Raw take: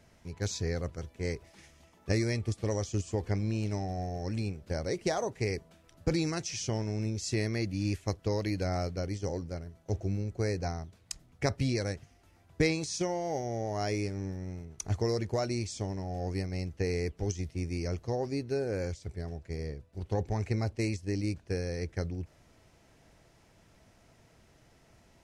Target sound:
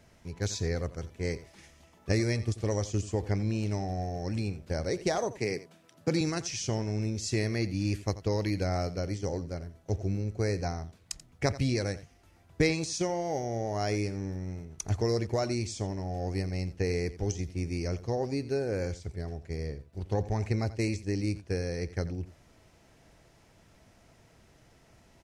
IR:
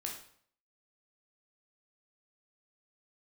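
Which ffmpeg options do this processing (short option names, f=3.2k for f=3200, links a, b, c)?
-filter_complex "[0:a]asettb=1/sr,asplit=3[a][b][c];[a]atrim=end=5.384[d];[b]atrim=start=5.38:end=6.21,asetpts=PTS-STARTPTS,afade=t=in:d=0.004:c=qsin,afade=t=out:st=0.826:d=0.004:c=qsin,highpass=f=130:w=0.5412,highpass=f=130:w=1.3066[e];[c]atrim=start=6.206[f];[d][e]acrossfade=d=0.004:c1=hsin:c2=qsin[g];[g][f]acrossfade=d=0.004:c1=qsin:c2=hsin,aecho=1:1:86:0.158,volume=1.5dB"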